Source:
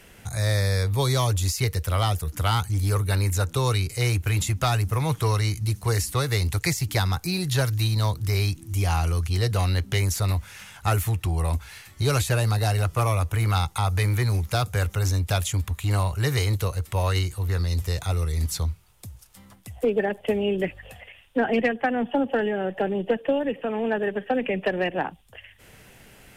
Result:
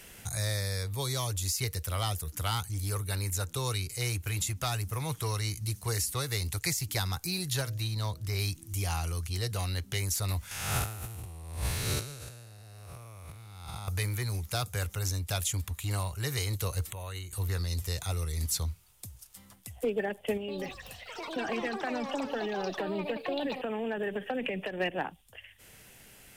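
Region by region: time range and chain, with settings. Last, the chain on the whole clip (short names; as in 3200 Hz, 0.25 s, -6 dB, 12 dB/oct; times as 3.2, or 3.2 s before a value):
7.61–8.39 high shelf 6200 Hz -8.5 dB + de-hum 126 Hz, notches 5
10.51–13.88 time blur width 0.347 s + negative-ratio compressor -33 dBFS, ratio -0.5
16.9–17.33 Butterworth band-stop 5100 Hz, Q 2.5 + compressor 3:1, threshold -43 dBFS
20.37–24.8 compressor 10:1, threshold -27 dBFS + echoes that change speed 0.113 s, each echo +6 st, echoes 3, each echo -6 dB
whole clip: vocal rider; high shelf 3500 Hz +9.5 dB; gain -8.5 dB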